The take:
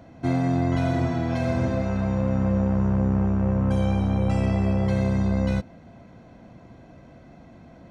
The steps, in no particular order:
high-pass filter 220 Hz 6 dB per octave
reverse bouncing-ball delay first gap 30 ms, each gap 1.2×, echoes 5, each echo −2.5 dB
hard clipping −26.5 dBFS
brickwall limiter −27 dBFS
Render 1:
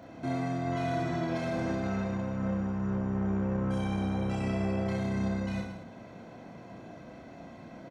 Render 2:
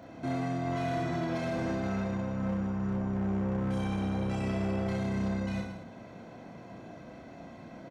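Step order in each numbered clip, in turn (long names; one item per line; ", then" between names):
high-pass filter, then brickwall limiter, then hard clipping, then reverse bouncing-ball delay
high-pass filter, then brickwall limiter, then reverse bouncing-ball delay, then hard clipping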